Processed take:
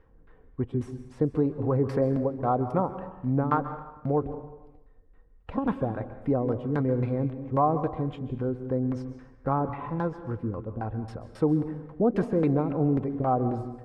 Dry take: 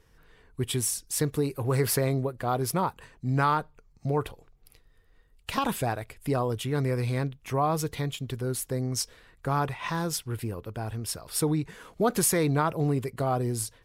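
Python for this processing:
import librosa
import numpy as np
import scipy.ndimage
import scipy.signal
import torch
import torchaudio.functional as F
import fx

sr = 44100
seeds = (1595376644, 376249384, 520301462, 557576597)

y = fx.filter_lfo_lowpass(x, sr, shape='saw_down', hz=3.7, low_hz=280.0, high_hz=1600.0, q=0.95)
y = y + 0.32 * np.pad(y, (int(3.8 * sr / 1000.0), 0))[:len(y)]
y = fx.rev_plate(y, sr, seeds[0], rt60_s=0.95, hf_ratio=0.8, predelay_ms=120, drr_db=10.5)
y = F.gain(torch.from_numpy(y), 2.0).numpy()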